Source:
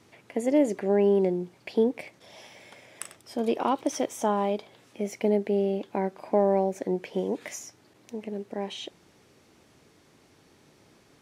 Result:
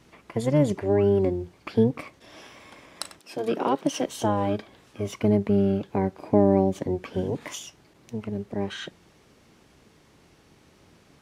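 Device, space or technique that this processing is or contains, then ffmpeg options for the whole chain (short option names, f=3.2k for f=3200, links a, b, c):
octave pedal: -filter_complex "[0:a]asplit=2[a][b];[b]asetrate=22050,aresample=44100,atempo=2,volume=-1dB[c];[a][c]amix=inputs=2:normalize=0,asettb=1/sr,asplit=3[d][e][f];[d]atrim=end=3.194[g];[e]atrim=start=3.19:end=4.06,asetpts=PTS-STARTPTS,afade=t=in:d=0.004:c=qsin,afade=t=out:st=0.866:d=0.004:c=qsin,highpass=f=200:w=0.5412,highpass=f=200:w=1.3066[h];[f]atrim=start=4.056[i];[g][h]acrossfade=d=0.004:c1=hsin:c2=qsin[j];[j][i]acrossfade=d=0.004:c1=qsin:c2=hsin"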